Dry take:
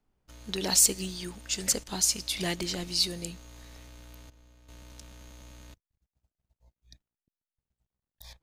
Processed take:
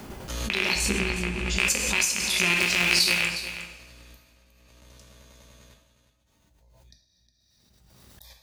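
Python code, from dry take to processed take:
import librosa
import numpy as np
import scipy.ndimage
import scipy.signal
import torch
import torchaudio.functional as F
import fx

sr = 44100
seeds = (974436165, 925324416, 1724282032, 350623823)

y = fx.rattle_buzz(x, sr, strikes_db=-37.0, level_db=-10.0)
y = fx.riaa(y, sr, side='playback', at=(0.75, 1.57))
y = fx.highpass(y, sr, hz=98.0, slope=6)
y = fx.high_shelf(y, sr, hz=6500.0, db=9.5, at=(2.53, 3.22))
y = fx.level_steps(y, sr, step_db=16, at=(4.16, 4.82))
y = fx.tremolo_shape(y, sr, shape='saw_down', hz=10.0, depth_pct=60)
y = y + 10.0 ** (-12.0 / 20.0) * np.pad(y, (int(361 * sr / 1000.0), 0))[:len(y)]
y = fx.rev_double_slope(y, sr, seeds[0], early_s=0.7, late_s=2.4, knee_db=-18, drr_db=1.5)
y = fx.pre_swell(y, sr, db_per_s=24.0)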